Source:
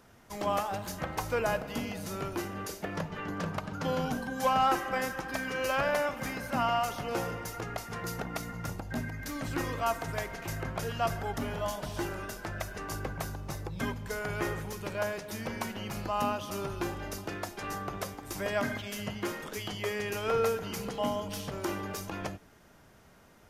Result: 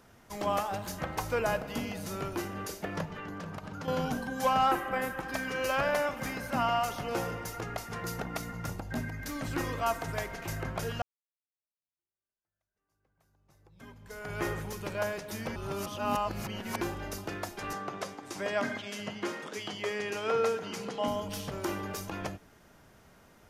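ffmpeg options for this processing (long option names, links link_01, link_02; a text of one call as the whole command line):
ffmpeg -i in.wav -filter_complex "[0:a]asettb=1/sr,asplit=3[link_01][link_02][link_03];[link_01]atrim=end=3.054[link_04];[link_02]atrim=start=3.05:end=3.88,asetpts=PTS-STARTPTS,afade=type=in:duration=0.004:curve=qsin,afade=type=out:start_time=0.826:duration=0.004:curve=qsin,acompressor=threshold=-37dB:ratio=4:attack=3.2:release=140:knee=1:detection=peak[link_05];[link_03]atrim=start=3.876[link_06];[link_04][link_05]acrossfade=duration=0.004:curve1=hsin:curve2=qsin[link_07];[link_07][link_06]acrossfade=duration=0.004:curve1=qsin:curve2=hsin,asettb=1/sr,asplit=3[link_08][link_09][link_10];[link_08]atrim=end=4.714[link_11];[link_09]atrim=start=4.71:end=5.23,asetpts=PTS-STARTPTS,afade=type=in:duration=0.004:curve=qsin,afade=type=out:start_time=0.516:duration=0.004:curve=qsin,equalizer=frequency=5600:width=1.4:gain=-11[link_12];[link_10]atrim=start=5.226[link_13];[link_11][link_12]acrossfade=duration=0.004:curve1=hsin:curve2=qsin[link_14];[link_14][link_13]acrossfade=duration=0.004:curve1=qsin:curve2=hsin,asettb=1/sr,asplit=3[link_15][link_16][link_17];[link_15]atrim=end=17.734[link_18];[link_16]atrim=start=17.73:end=21.08,asetpts=PTS-STARTPTS,afade=type=in:duration=0.004:curve=qsin,afade=type=out:start_time=3.346:duration=0.004:curve=qsin,highpass=180,lowpass=7700[link_19];[link_17]atrim=start=21.076[link_20];[link_18][link_19]acrossfade=duration=0.004:curve1=hsin:curve2=qsin[link_21];[link_21][link_20]acrossfade=duration=0.004:curve1=qsin:curve2=hsin,asplit=4[link_22][link_23][link_24][link_25];[link_22]atrim=end=11.02,asetpts=PTS-STARTPTS,afade=type=out:start_time=11.016:duration=0.004:curve=hsin[link_26];[link_23]atrim=start=11.02:end=15.562,asetpts=PTS-STARTPTS,afade=type=in:duration=3.42:curve=exp[link_27];[link_24]atrim=start=15.558:end=16.812,asetpts=PTS-STARTPTS,areverse[link_28];[link_25]atrim=start=16.808[link_29];[link_26][link_27]concat=n=2:v=0:a=1[link_30];[link_30][link_28]acrossfade=duration=0.004:curve1=hsin:curve2=hsin[link_31];[link_31][link_29]acrossfade=duration=0.004:curve1=hsin:curve2=hsin" out.wav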